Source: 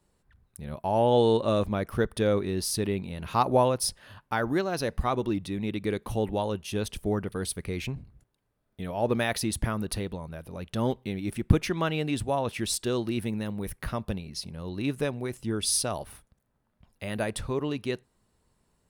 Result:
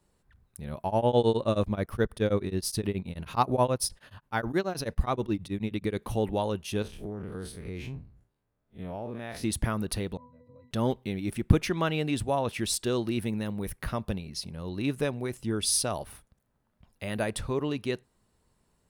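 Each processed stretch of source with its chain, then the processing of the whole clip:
0:00.86–0:05.98: low-shelf EQ 150 Hz +4.5 dB + tremolo along a rectified sine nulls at 9.4 Hz
0:06.82–0:09.44: spectrum smeared in time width 82 ms + high-shelf EQ 2,900 Hz −8 dB + downward compressor 12 to 1, threshold −32 dBFS
0:10.17–0:10.71: resonances in every octave B, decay 0.3 s + multiband upward and downward compressor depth 100%
whole clip: no processing

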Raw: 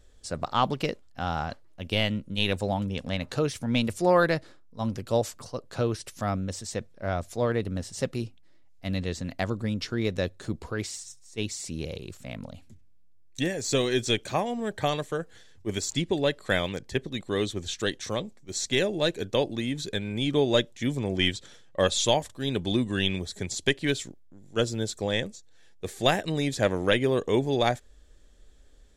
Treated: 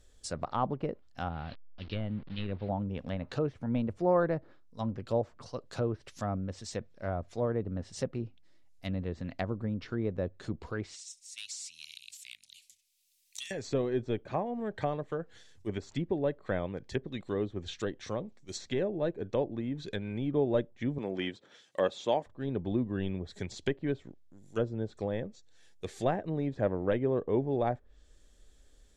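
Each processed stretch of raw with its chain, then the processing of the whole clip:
0:01.29–0:02.69: linear delta modulator 64 kbit/s, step −35 dBFS + Butterworth low-pass 4,500 Hz 48 dB per octave + parametric band 990 Hz −9 dB 2.7 octaves
0:10.94–0:13.51: inverse Chebyshev high-pass filter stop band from 1,200 Hz + hard clipping −32.5 dBFS + multiband upward and downward compressor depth 70%
0:20.98–0:22.26: high-pass filter 220 Hz + high-shelf EQ 2,200 Hz +11 dB
whole clip: treble cut that deepens with the level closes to 980 Hz, closed at −25 dBFS; high-shelf EQ 4,400 Hz +6.5 dB; level −4.5 dB

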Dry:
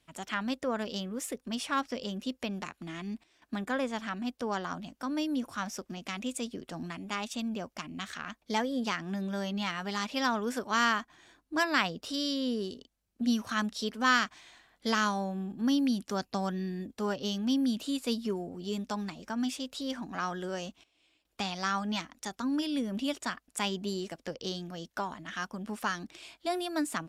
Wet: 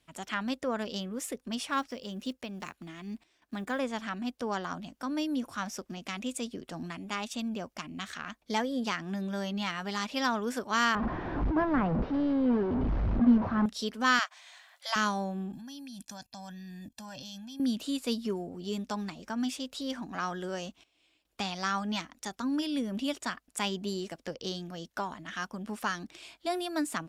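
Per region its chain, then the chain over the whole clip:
0:01.65–0:03.79: one scale factor per block 7 bits + shaped tremolo triangle 2.1 Hz, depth 50%
0:10.95–0:13.66: linear delta modulator 32 kbit/s, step −28 dBFS + Chebyshev low-pass filter 1,000 Hz + low-shelf EQ 360 Hz +10.5 dB
0:14.19–0:14.96: linear-phase brick-wall high-pass 520 Hz + one half of a high-frequency compander encoder only
0:15.53–0:17.60: high-shelf EQ 3,000 Hz +11.5 dB + comb filter 1.2 ms, depth 91% + output level in coarse steps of 22 dB
whole clip: no processing

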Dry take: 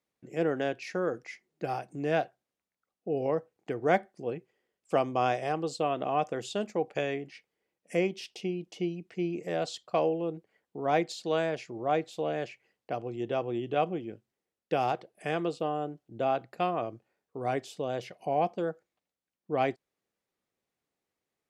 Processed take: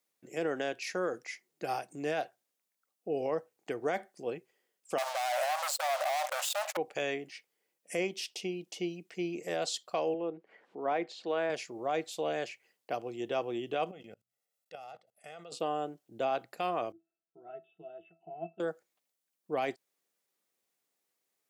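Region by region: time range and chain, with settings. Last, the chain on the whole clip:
0:04.98–0:06.77: parametric band 5,300 Hz −12.5 dB 2.4 octaves + leveller curve on the samples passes 5 + linear-phase brick-wall high-pass 530 Hz
0:10.14–0:11.50: band-pass filter 190–2,200 Hz + upward compression, threshold −45 dBFS
0:13.91–0:15.52: mains-hum notches 60/120/180/240 Hz + comb filter 1.5 ms, depth 67% + output level in coarse steps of 23 dB
0:16.92–0:18.60: linear-phase brick-wall low-pass 3,800 Hz + resonances in every octave E, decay 0.18 s
whole clip: high-pass filter 370 Hz 6 dB per octave; high-shelf EQ 5,400 Hz +11.5 dB; brickwall limiter −22.5 dBFS

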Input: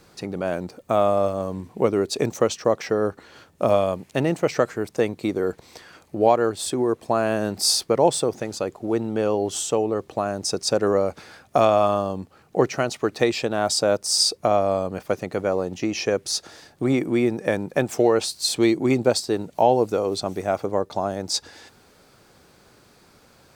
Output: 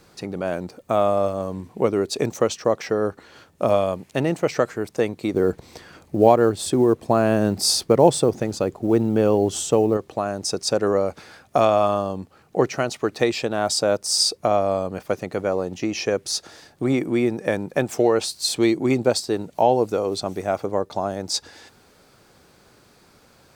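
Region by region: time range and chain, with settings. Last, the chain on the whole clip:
0:05.34–0:09.97: low-shelf EQ 410 Hz +8.5 dB + log-companded quantiser 8 bits
whole clip: no processing

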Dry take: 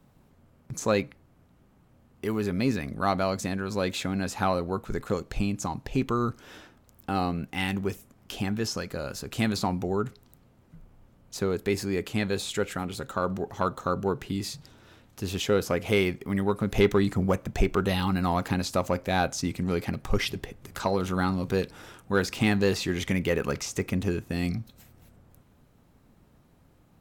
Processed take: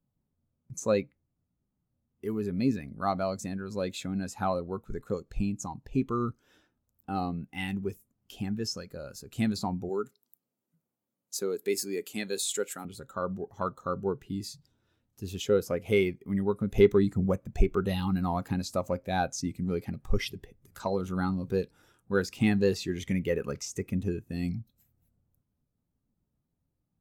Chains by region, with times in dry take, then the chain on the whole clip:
0:09.89–0:12.85: high-pass filter 230 Hz + high-shelf EQ 4,200 Hz +9 dB
whole clip: high-shelf EQ 5,800 Hz +11.5 dB; every bin expanded away from the loudest bin 1.5 to 1

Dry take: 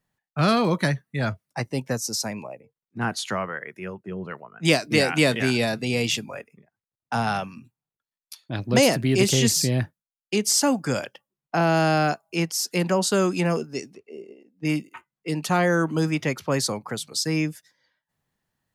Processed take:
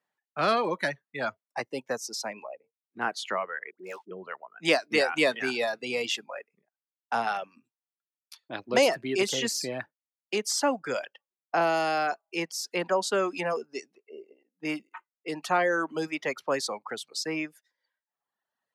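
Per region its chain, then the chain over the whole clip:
0:03.71–0:04.11: gap after every zero crossing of 0.082 ms + high-pass filter 220 Hz + all-pass dispersion highs, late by 83 ms, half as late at 830 Hz
0:11.61–0:12.07: high-shelf EQ 7,600 Hz +8.5 dB + notch filter 1,600 Hz, Q 15
whole clip: low-pass filter 2,800 Hz 6 dB per octave; reverb reduction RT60 1.1 s; high-pass filter 430 Hz 12 dB per octave

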